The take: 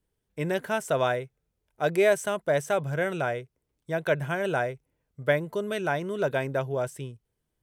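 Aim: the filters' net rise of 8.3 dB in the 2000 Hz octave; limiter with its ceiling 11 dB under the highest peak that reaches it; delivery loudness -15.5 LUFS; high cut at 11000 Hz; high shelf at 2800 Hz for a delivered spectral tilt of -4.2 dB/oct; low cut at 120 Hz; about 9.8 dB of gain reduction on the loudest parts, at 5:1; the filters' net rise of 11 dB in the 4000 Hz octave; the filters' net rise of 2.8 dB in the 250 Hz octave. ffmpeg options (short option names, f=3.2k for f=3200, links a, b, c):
-af "highpass=120,lowpass=11k,equalizer=f=250:t=o:g=5,equalizer=f=2k:t=o:g=7.5,highshelf=f=2.8k:g=6,equalizer=f=4k:t=o:g=6.5,acompressor=threshold=-24dB:ratio=5,volume=18dB,alimiter=limit=-3dB:level=0:latency=1"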